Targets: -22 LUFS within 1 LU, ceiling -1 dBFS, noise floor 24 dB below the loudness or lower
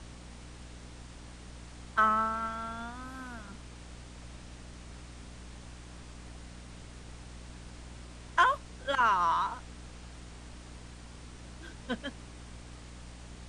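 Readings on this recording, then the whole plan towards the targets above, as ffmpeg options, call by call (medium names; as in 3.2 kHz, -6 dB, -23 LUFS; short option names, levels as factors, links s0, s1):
hum 60 Hz; highest harmonic 300 Hz; hum level -46 dBFS; noise floor -48 dBFS; noise floor target -55 dBFS; loudness -30.5 LUFS; peak level -12.5 dBFS; loudness target -22.0 LUFS
-> -af "bandreject=f=60:t=h:w=4,bandreject=f=120:t=h:w=4,bandreject=f=180:t=h:w=4,bandreject=f=240:t=h:w=4,bandreject=f=300:t=h:w=4"
-af "afftdn=nr=7:nf=-48"
-af "volume=2.66"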